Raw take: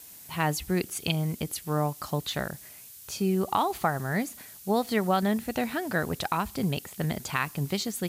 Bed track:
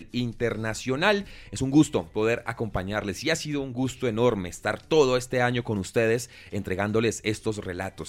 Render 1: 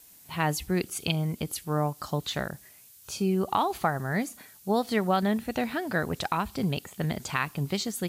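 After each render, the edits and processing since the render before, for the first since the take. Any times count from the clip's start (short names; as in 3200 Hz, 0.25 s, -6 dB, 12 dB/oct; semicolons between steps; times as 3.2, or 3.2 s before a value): noise print and reduce 6 dB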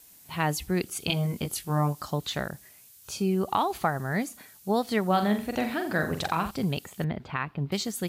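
1.07–2.03 doubler 21 ms -3 dB; 5.06–6.51 flutter echo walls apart 7.5 m, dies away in 0.37 s; 7.04–7.72 air absorption 400 m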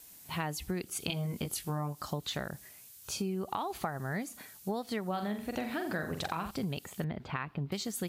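compressor 5:1, threshold -32 dBFS, peak gain reduction 12 dB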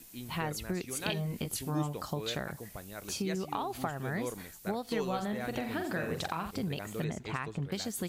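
add bed track -16.5 dB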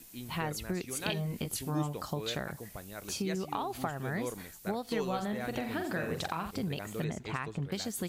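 nothing audible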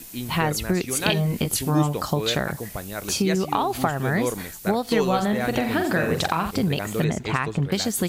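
gain +12 dB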